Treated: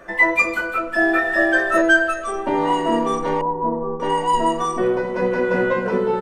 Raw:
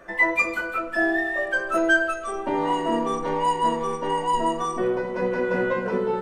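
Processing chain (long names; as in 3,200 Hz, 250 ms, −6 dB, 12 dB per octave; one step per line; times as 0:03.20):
0:00.73–0:01.41: delay throw 400 ms, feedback 15%, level −2 dB
0:03.41–0:04.00: Bessel low-pass filter 720 Hz, order 6
level +4.5 dB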